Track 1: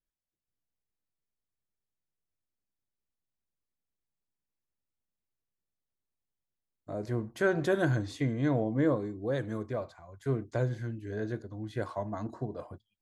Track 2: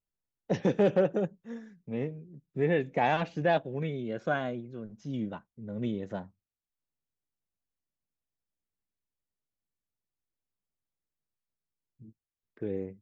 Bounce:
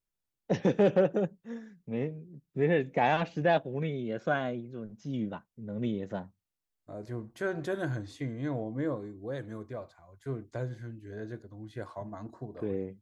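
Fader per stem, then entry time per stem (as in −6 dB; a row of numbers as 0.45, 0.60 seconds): −5.5, +0.5 decibels; 0.00, 0.00 seconds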